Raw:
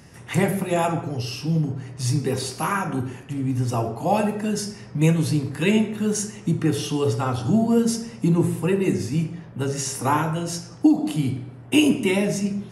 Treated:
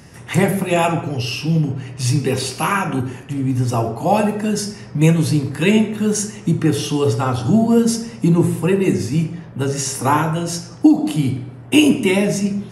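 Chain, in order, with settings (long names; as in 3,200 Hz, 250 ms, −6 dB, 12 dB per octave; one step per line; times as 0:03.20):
0:00.67–0:03.01: parametric band 2,700 Hz +7 dB 0.54 octaves
level +5 dB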